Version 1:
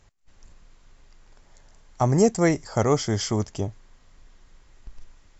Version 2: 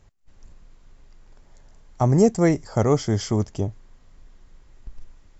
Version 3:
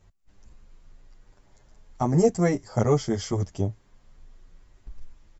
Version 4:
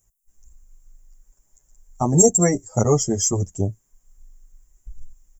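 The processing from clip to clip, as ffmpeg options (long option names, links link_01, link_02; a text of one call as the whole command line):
ffmpeg -i in.wav -af "tiltshelf=frequency=700:gain=3.5" out.wav
ffmpeg -i in.wav -filter_complex "[0:a]asplit=2[link_01][link_02];[link_02]adelay=8.4,afreqshift=0.87[link_03];[link_01][link_03]amix=inputs=2:normalize=1" out.wav
ffmpeg -i in.wav -af "afftdn=noise_reduction=17:noise_floor=-34,aexciter=amount=12.8:drive=9.9:freq=6700,volume=3.5dB" out.wav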